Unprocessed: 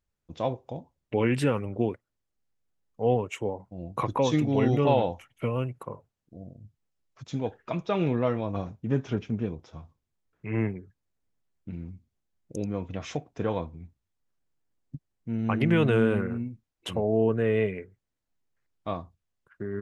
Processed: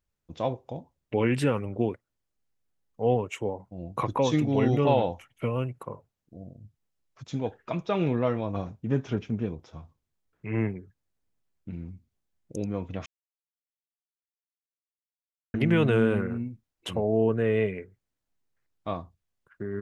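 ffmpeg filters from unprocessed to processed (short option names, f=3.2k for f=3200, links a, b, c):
-filter_complex "[0:a]asplit=3[a][b][c];[a]atrim=end=13.06,asetpts=PTS-STARTPTS,afade=t=out:st=13.056:d=0.004:c=hsin[d];[b]atrim=start=13.06:end=15.54,asetpts=PTS-STARTPTS,volume=0[e];[c]atrim=start=15.54,asetpts=PTS-STARTPTS,afade=t=in:d=0.004:c=hsin[f];[d][e][f]concat=n=3:v=0:a=1"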